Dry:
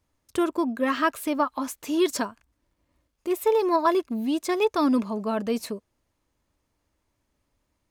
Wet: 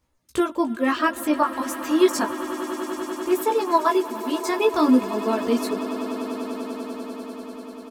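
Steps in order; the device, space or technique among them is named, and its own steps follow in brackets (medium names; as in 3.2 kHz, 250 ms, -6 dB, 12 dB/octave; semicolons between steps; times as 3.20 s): double-tracked vocal (doubling 16 ms -12 dB; chorus 0.33 Hz, delay 16 ms, depth 4.2 ms); 3.40–4.44 s: high-pass 340 Hz; reverb removal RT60 0.81 s; echo with a slow build-up 98 ms, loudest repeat 8, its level -17.5 dB; trim +6 dB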